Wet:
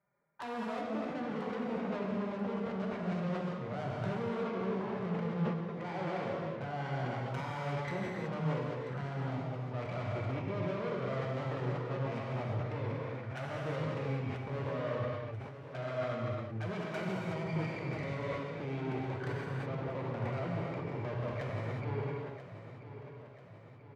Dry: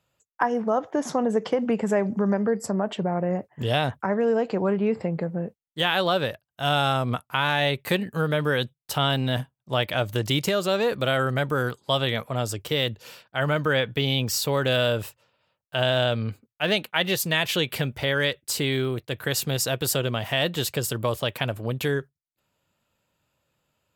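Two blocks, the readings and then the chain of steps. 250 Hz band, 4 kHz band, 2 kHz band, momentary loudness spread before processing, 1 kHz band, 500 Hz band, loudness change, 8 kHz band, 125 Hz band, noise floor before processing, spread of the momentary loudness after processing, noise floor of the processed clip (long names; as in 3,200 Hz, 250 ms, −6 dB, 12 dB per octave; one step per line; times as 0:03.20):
−9.5 dB, −25.5 dB, −16.0 dB, 6 LU, −11.5 dB, −12.0 dB, −12.0 dB, below −30 dB, −8.0 dB, −85 dBFS, 5 LU, −50 dBFS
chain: gain on one half-wave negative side −3 dB
in parallel at −2 dB: compressor whose output falls as the input rises −28 dBFS, ratio −0.5
on the sum: flanger swept by the level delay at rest 5.1 ms, full sweep at −21 dBFS
linear-phase brick-wall low-pass 2,400 Hz
tube saturation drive 30 dB, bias 0.3
high-pass filter 84 Hz
on a send: repeating echo 987 ms, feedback 54%, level −12.5 dB
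on the sum: reverb whose tail is shaped and stops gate 400 ms flat, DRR −4.5 dB
level that may fall only so fast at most 53 dB per second
level −9 dB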